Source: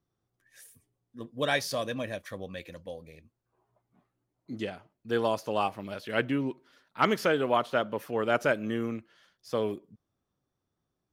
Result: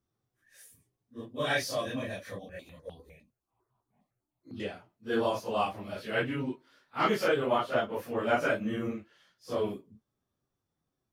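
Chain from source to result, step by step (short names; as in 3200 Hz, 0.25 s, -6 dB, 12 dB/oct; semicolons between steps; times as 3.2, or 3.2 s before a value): phase scrambler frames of 0.1 s; 2.39–4.6 step phaser 9.9 Hz 390–2000 Hz; gain -1.5 dB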